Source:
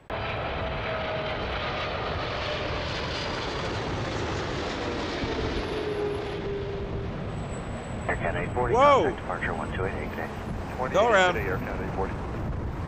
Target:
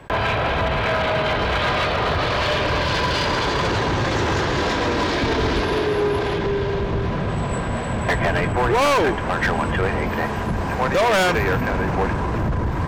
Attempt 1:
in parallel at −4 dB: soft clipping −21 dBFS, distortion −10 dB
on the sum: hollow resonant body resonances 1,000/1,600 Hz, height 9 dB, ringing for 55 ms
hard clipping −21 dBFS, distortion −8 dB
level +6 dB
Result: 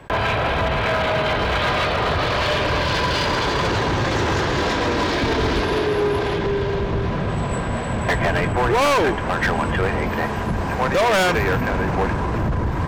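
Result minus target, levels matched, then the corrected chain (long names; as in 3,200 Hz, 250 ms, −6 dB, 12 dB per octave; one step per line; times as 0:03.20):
soft clipping: distortion −4 dB
in parallel at −4 dB: soft clipping −27.5 dBFS, distortion −6 dB
on the sum: hollow resonant body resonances 1,000/1,600 Hz, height 9 dB, ringing for 55 ms
hard clipping −21 dBFS, distortion −9 dB
level +6 dB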